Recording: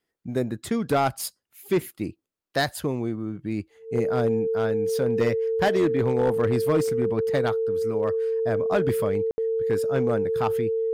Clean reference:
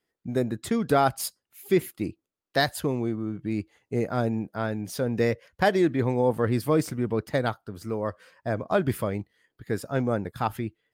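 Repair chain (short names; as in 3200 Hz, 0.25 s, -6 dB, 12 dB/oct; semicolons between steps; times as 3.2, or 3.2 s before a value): clip repair -15.5 dBFS; notch 450 Hz, Q 30; room tone fill 9.31–9.38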